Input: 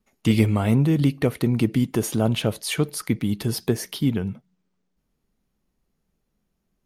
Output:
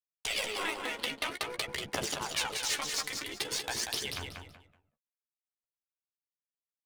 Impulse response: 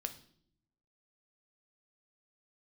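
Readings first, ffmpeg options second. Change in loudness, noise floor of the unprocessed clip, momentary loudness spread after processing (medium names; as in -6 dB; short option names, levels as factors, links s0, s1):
-10.5 dB, -75 dBFS, 5 LU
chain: -filter_complex "[0:a]aemphasis=mode=production:type=bsi,afftfilt=real='re*lt(hypot(re,im),0.112)':imag='im*lt(hypot(re,im),0.112)':win_size=1024:overlap=0.75,equalizer=f=13000:t=o:w=0.46:g=-9.5,areverse,acompressor=mode=upward:threshold=0.00794:ratio=2.5,areverse,aeval=exprs='sgn(val(0))*max(abs(val(0))-0.00501,0)':c=same,aphaser=in_gain=1:out_gain=1:delay=4.4:decay=0.6:speed=0.5:type=triangular,adynamicsmooth=sensitivity=7:basefreq=2100,asplit=2[s0][s1];[s1]adelay=14,volume=0.422[s2];[s0][s2]amix=inputs=2:normalize=0,asplit=2[s3][s4];[s4]aecho=0:1:188|376|564:0.531|0.138|0.0359[s5];[s3][s5]amix=inputs=2:normalize=0"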